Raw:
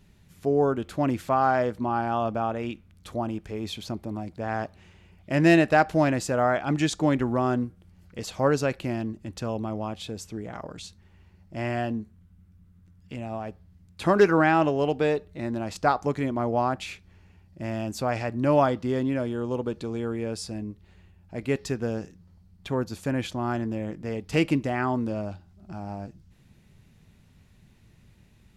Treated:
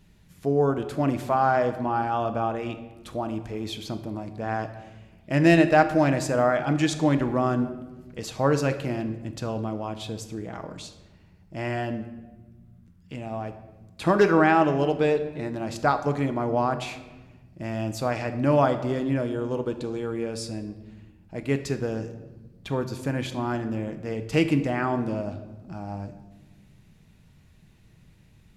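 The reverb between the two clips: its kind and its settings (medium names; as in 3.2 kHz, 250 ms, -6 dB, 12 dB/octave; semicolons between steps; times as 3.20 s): simulated room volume 750 m³, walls mixed, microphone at 0.59 m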